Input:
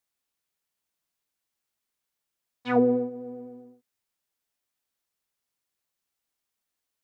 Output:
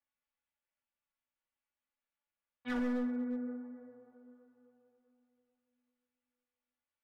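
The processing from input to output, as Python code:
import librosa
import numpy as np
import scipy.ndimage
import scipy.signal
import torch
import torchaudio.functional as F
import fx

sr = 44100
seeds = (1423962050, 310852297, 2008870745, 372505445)

y = scipy.signal.sosfilt(scipy.signal.butter(4, 2900.0, 'lowpass', fs=sr, output='sos'), x)
y = fx.peak_eq(y, sr, hz=330.0, db=-7.0, octaves=0.74)
y = fx.comb_fb(y, sr, f0_hz=85.0, decay_s=0.21, harmonics='all', damping=0.0, mix_pct=80)
y = fx.rev_plate(y, sr, seeds[0], rt60_s=3.4, hf_ratio=0.4, predelay_ms=0, drr_db=8.0)
y = np.clip(y, -10.0 ** (-33.0 / 20.0), 10.0 ** (-33.0 / 20.0))
y = y + 0.69 * np.pad(y, (int(3.5 * sr / 1000.0), 0))[:len(y)]
y = y * librosa.db_to_amplitude(-1.5)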